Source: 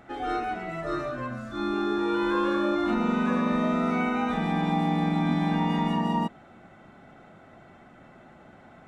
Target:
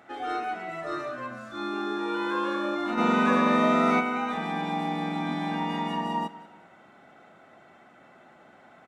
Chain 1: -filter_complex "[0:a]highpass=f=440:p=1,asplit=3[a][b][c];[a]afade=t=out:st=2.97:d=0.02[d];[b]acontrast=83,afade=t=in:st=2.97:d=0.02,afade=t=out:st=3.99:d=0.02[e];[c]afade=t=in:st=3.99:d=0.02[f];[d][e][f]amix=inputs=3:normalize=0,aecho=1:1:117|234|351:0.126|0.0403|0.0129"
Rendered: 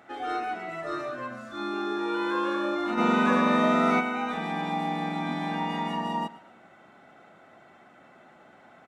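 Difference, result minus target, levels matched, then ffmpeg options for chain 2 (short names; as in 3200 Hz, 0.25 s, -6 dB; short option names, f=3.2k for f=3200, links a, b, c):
echo 70 ms early
-filter_complex "[0:a]highpass=f=440:p=1,asplit=3[a][b][c];[a]afade=t=out:st=2.97:d=0.02[d];[b]acontrast=83,afade=t=in:st=2.97:d=0.02,afade=t=out:st=3.99:d=0.02[e];[c]afade=t=in:st=3.99:d=0.02[f];[d][e][f]amix=inputs=3:normalize=0,aecho=1:1:187|374|561:0.126|0.0403|0.0129"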